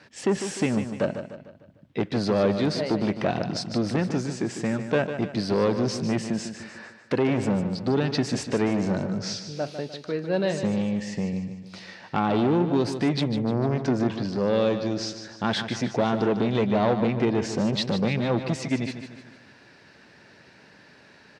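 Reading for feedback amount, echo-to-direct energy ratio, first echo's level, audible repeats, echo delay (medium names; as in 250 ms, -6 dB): 46%, -8.5 dB, -9.5 dB, 4, 150 ms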